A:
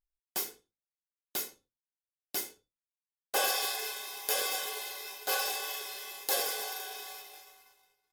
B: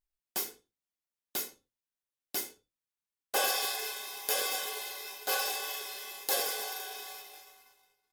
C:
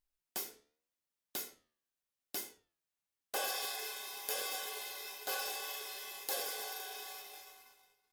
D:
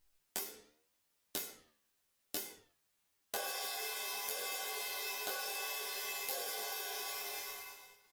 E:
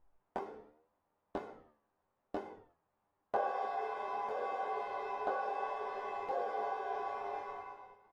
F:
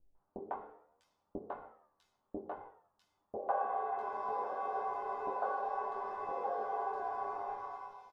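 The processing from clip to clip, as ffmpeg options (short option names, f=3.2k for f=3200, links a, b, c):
-af "equalizer=f=250:t=o:w=0.41:g=2.5"
-af "acompressor=threshold=-49dB:ratio=1.5,flanger=delay=9.4:depth=4.8:regen=86:speed=0.82:shape=triangular,volume=5dB"
-af "acompressor=threshold=-49dB:ratio=10,aecho=1:1:10|23:0.668|0.668,volume=9dB"
-af "lowpass=f=910:t=q:w=1.8,volume=6dB"
-filter_complex "[0:a]highshelf=f=1.6k:t=q:w=1.5:g=-7,acrossover=split=510|3200[a][b][c];[b]adelay=150[d];[c]adelay=650[e];[a][d][e]amix=inputs=3:normalize=0,volume=1dB"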